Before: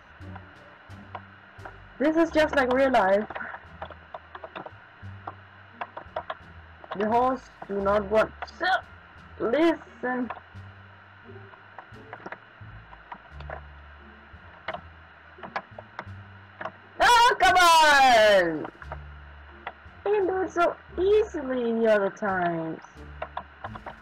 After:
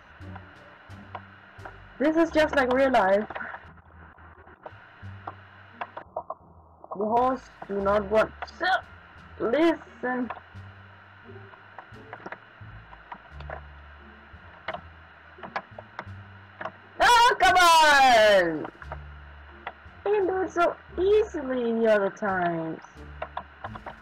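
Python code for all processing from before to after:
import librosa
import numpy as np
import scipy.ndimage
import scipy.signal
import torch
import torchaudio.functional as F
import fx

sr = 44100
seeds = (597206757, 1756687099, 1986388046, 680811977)

y = fx.chain(x, sr, fx.lowpass(hz=1300.0, slope=12),
    fx.peak_eq(hz=610.0, db=-9.5, octaves=0.38),
    fx.over_compress(threshold_db=-51.0, ratio=-1.0), at=(3.68, 4.66))
y = fx.chain(y, sr, fx.steep_lowpass(hz=1200.0, slope=96),
    fx.low_shelf(hz=130.0, db=-9.0), at=(6.02, 7.17))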